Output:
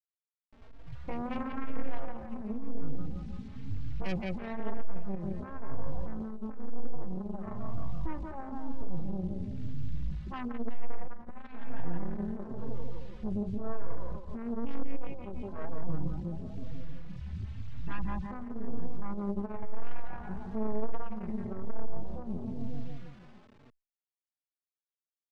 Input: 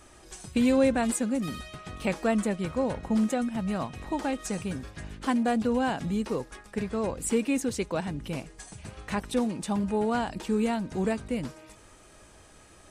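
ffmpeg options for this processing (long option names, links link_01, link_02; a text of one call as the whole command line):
ffmpeg -i in.wav -filter_complex "[0:a]aeval=exprs='max(val(0),0)':channel_layout=same,afwtdn=0.0112,atempo=0.51,asubboost=boost=4:cutoff=180,afftfilt=real='re*gte(hypot(re,im),0.0251)':imag='im*gte(hypot(re,im),0.0251)':win_size=1024:overlap=0.75,aecho=1:1:173|346|519|692|865|1038|1211:0.531|0.287|0.155|0.0836|0.0451|0.0244|0.0132,acrusher=bits=9:mix=0:aa=0.000001,lowpass=3900,lowshelf=frequency=100:gain=-7,asoftclip=type=tanh:threshold=-28.5dB,asplit=2[link_01][link_02];[link_02]adelay=3.7,afreqshift=1[link_03];[link_01][link_03]amix=inputs=2:normalize=1,volume=8.5dB" out.wav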